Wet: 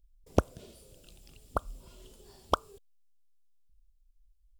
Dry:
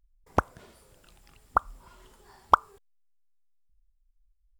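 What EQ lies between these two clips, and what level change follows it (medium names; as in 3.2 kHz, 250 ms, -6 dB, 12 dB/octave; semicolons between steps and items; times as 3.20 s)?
high-order bell 1.3 kHz -13.5 dB; +3.0 dB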